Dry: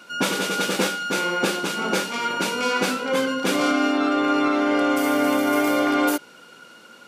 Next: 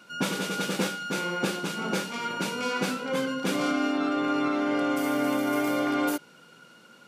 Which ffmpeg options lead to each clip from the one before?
-af "equalizer=f=150:w=1.5:g=9,volume=0.447"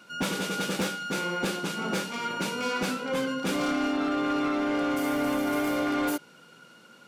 -af "asoftclip=type=hard:threshold=0.075"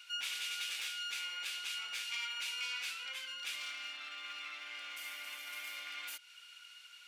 -af "acompressor=threshold=0.0224:ratio=10,highpass=f=2500:t=q:w=2.1,volume=0.891"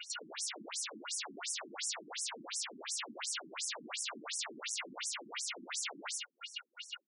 -af "aecho=1:1:49.56|87.46:0.447|0.355,aeval=exprs='(mod(106*val(0)+1,2)-1)/106':c=same,afftfilt=real='re*between(b*sr/1024,240*pow(7700/240,0.5+0.5*sin(2*PI*2.8*pts/sr))/1.41,240*pow(7700/240,0.5+0.5*sin(2*PI*2.8*pts/sr))*1.41)':imag='im*between(b*sr/1024,240*pow(7700/240,0.5+0.5*sin(2*PI*2.8*pts/sr))/1.41,240*pow(7700/240,0.5+0.5*sin(2*PI*2.8*pts/sr))*1.41)':win_size=1024:overlap=0.75,volume=4.73"

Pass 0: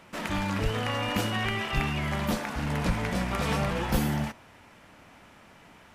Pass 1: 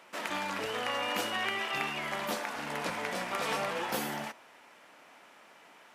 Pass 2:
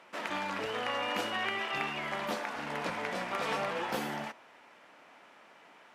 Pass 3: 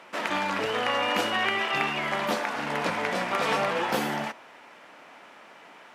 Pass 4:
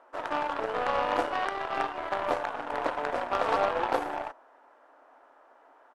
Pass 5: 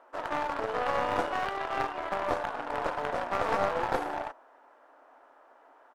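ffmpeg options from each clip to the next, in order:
-af "highpass=400,volume=0.841"
-af "highshelf=f=6800:g=-12"
-af "highpass=68,volume=2.37"
-af "afftfilt=real='re*between(b*sr/4096,240,12000)':imag='im*between(b*sr/4096,240,12000)':win_size=4096:overlap=0.75,firequalizer=gain_entry='entry(320,0);entry(650,6);entry(1600,0);entry(2200,-13);entry(8100,-10)':delay=0.05:min_phase=1,aeval=exprs='0.316*(cos(1*acos(clip(val(0)/0.316,-1,1)))-cos(1*PI/2))+0.0282*(cos(7*acos(clip(val(0)/0.316,-1,1)))-cos(7*PI/2))+0.00398*(cos(8*acos(clip(val(0)/0.316,-1,1)))-cos(8*PI/2))':c=same,volume=0.794"
-af "aeval=exprs='clip(val(0),-1,0.0376)':c=same"

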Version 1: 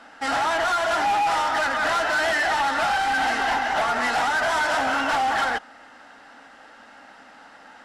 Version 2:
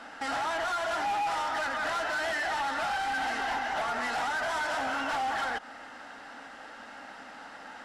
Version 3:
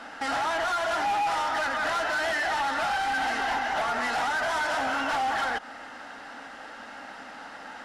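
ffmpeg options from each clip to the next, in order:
-af "alimiter=level_in=1.5:limit=0.0631:level=0:latency=1:release=106,volume=0.668,volume=1.19"
-af "bandreject=f=7700:w=26,volume=1.5"

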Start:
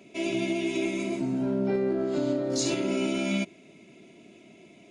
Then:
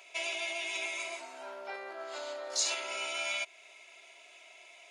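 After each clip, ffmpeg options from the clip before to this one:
-filter_complex "[0:a]asplit=2[s0][s1];[s1]acompressor=threshold=0.0178:ratio=6,volume=1.26[s2];[s0][s2]amix=inputs=2:normalize=0,highpass=f=770:w=0.5412,highpass=f=770:w=1.3066,volume=0.794"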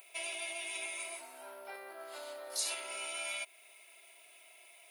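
-af "aexciter=amount=14.5:drive=8.4:freq=10000,volume=0.531"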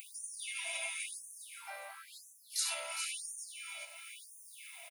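-af "aecho=1:1:409|818|1227|1636:0.398|0.127|0.0408|0.013,acompressor=mode=upward:threshold=0.00708:ratio=2.5,afftfilt=real='re*gte(b*sr/1024,500*pow(5800/500,0.5+0.5*sin(2*PI*0.97*pts/sr)))':imag='im*gte(b*sr/1024,500*pow(5800/500,0.5+0.5*sin(2*PI*0.97*pts/sr)))':win_size=1024:overlap=0.75,volume=1.12"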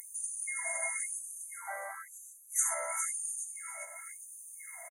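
-af "aresample=32000,aresample=44100,afftfilt=real='re*(1-between(b*sr/4096,2200,6000))':imag='im*(1-between(b*sr/4096,2200,6000))':win_size=4096:overlap=0.75,acontrast=80"

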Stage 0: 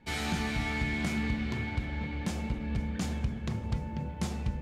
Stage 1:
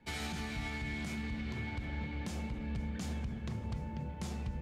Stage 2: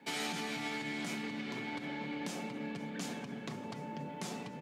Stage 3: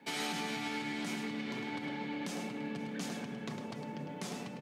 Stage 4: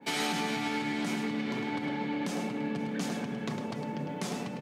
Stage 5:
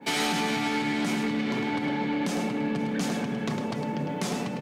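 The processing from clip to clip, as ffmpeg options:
-filter_complex "[0:a]alimiter=level_in=1.12:limit=0.0631:level=0:latency=1:release=69,volume=0.891,acrossover=split=140|3000[s0][s1][s2];[s1]acompressor=threshold=0.0178:ratio=6[s3];[s0][s3][s2]amix=inputs=3:normalize=0,volume=0.668"
-filter_complex "[0:a]asplit=2[s0][s1];[s1]alimiter=level_in=4.73:limit=0.0631:level=0:latency=1:release=443,volume=0.211,volume=1.26[s2];[s0][s2]amix=inputs=2:normalize=0,highpass=f=200:w=0.5412,highpass=f=200:w=1.3066,aecho=1:1:7.1:0.42"
-af "bandreject=f=7200:w=30,aecho=1:1:105:0.422"
-af "adynamicequalizer=threshold=0.00316:dfrequency=1700:dqfactor=0.7:tfrequency=1700:tqfactor=0.7:attack=5:release=100:ratio=0.375:range=2:mode=cutabove:tftype=highshelf,volume=2.11"
-af "asoftclip=type=tanh:threshold=0.0596,volume=2"

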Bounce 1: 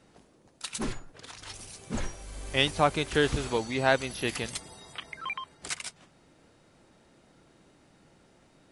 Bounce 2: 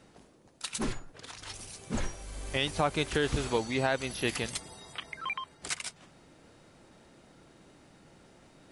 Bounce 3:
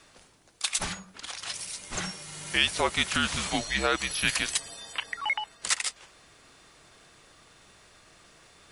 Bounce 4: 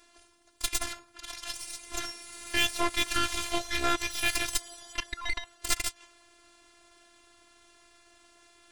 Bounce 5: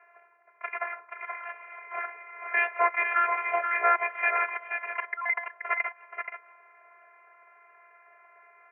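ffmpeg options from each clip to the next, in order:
-af "alimiter=limit=0.158:level=0:latency=1:release=153,areverse,acompressor=mode=upward:threshold=0.00282:ratio=2.5,areverse"
-af "tiltshelf=f=640:g=-9,afreqshift=-200"
-af "aeval=exprs='0.376*(cos(1*acos(clip(val(0)/0.376,-1,1)))-cos(1*PI/2))+0.0668*(cos(8*acos(clip(val(0)/0.376,-1,1)))-cos(8*PI/2))':c=same,afftfilt=real='hypot(re,im)*cos(PI*b)':imag='0':win_size=512:overlap=0.75"
-filter_complex "[0:a]asuperpass=centerf=1000:order=20:qfactor=0.52,asplit=2[s0][s1];[s1]aecho=0:1:478:0.473[s2];[s0][s2]amix=inputs=2:normalize=0,volume=2.24"

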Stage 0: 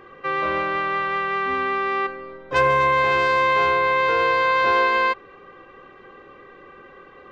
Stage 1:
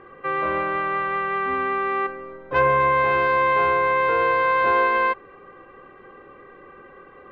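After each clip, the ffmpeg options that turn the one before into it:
-af "lowpass=2200"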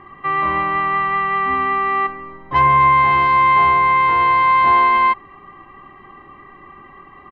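-af "aecho=1:1:1:0.9,volume=1.33"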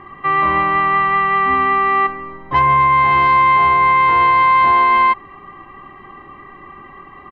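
-af "alimiter=limit=0.335:level=0:latency=1:release=116,volume=1.5"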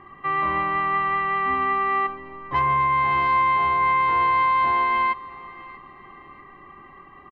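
-af "aecho=1:1:640|1280|1920:0.112|0.0393|0.0137,volume=0.398"

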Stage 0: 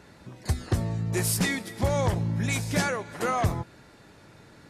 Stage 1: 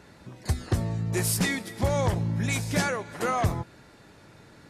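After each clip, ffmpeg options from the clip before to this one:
-af anull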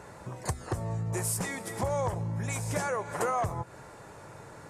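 -af "acompressor=threshold=0.0224:ratio=6,equalizer=f=125:t=o:w=1:g=4,equalizer=f=250:t=o:w=1:g=-5,equalizer=f=500:t=o:w=1:g=6,equalizer=f=1000:t=o:w=1:g=8,equalizer=f=4000:t=o:w=1:g=-7,equalizer=f=8000:t=o:w=1:g=8,volume=1.12"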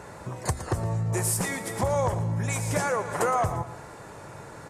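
-af "aecho=1:1:115|230|345|460:0.237|0.0877|0.0325|0.012,volume=1.68"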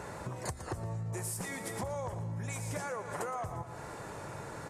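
-af "acompressor=threshold=0.0141:ratio=4"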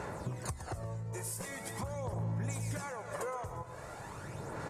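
-af "aphaser=in_gain=1:out_gain=1:delay=2.1:decay=0.46:speed=0.43:type=sinusoidal,volume=0.75"

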